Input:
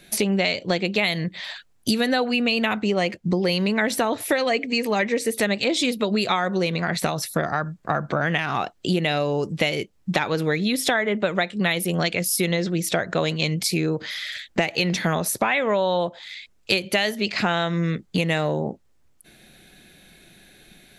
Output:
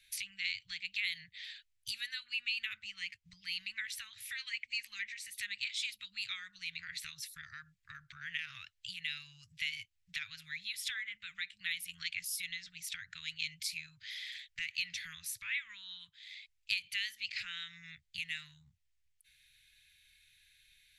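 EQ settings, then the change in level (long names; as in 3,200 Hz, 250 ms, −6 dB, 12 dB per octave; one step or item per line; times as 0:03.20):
inverse Chebyshev band-stop filter 290–720 Hz, stop band 70 dB
low-shelf EQ 430 Hz −10 dB
high-shelf EQ 3,600 Hz −8.5 dB
−7.5 dB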